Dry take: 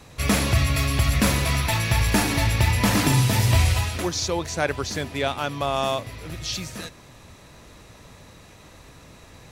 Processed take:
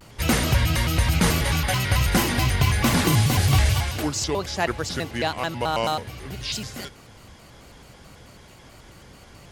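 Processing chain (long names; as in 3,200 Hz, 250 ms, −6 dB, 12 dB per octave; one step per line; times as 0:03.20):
pitch modulation by a square or saw wave square 4.6 Hz, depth 250 cents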